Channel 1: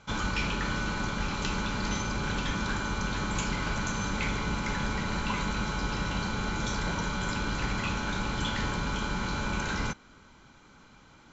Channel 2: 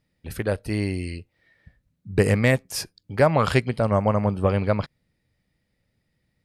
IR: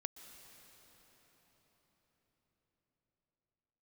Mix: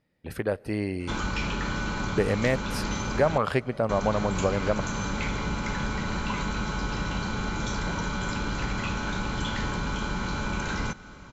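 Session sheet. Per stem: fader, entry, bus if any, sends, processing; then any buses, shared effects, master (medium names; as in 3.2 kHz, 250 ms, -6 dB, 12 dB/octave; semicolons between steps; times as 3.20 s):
+2.5 dB, 1.00 s, muted 3.38–3.89 s, send -7 dB, treble shelf 3.6 kHz +11 dB
+3.0 dB, 0.00 s, send -11 dB, bass shelf 170 Hz -11 dB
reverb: on, RT60 5.4 s, pre-delay 114 ms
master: treble shelf 2.7 kHz -12 dB; compression 1.5:1, threshold -31 dBFS, peak gain reduction 7.5 dB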